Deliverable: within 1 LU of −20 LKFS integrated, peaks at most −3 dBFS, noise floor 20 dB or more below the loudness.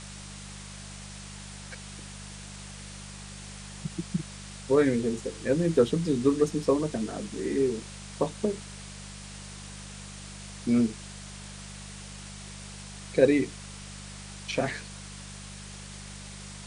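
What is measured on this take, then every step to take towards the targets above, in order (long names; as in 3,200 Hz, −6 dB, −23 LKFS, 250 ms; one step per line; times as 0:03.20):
mains hum 50 Hz; hum harmonics up to 200 Hz; level of the hum −42 dBFS; background noise floor −43 dBFS; target noise floor −48 dBFS; integrated loudness −28.0 LKFS; sample peak −7.5 dBFS; target loudness −20.0 LKFS
→ hum removal 50 Hz, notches 4
broadband denoise 6 dB, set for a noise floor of −43 dBFS
level +8 dB
brickwall limiter −3 dBFS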